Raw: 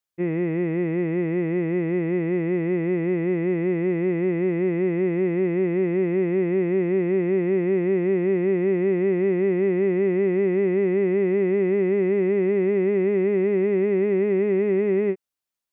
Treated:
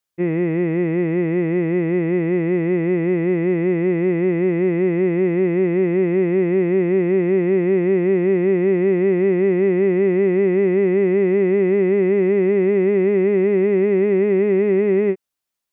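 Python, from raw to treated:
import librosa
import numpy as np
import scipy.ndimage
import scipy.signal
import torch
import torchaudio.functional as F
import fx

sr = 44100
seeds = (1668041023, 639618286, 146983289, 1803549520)

y = F.gain(torch.from_numpy(x), 4.5).numpy()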